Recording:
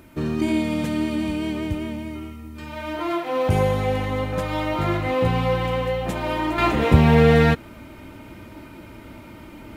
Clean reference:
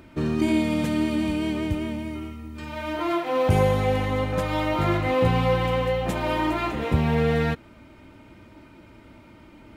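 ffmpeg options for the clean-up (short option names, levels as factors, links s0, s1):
-af "agate=range=0.0891:threshold=0.02,asetnsamples=n=441:p=0,asendcmd='6.58 volume volume -7.5dB',volume=1"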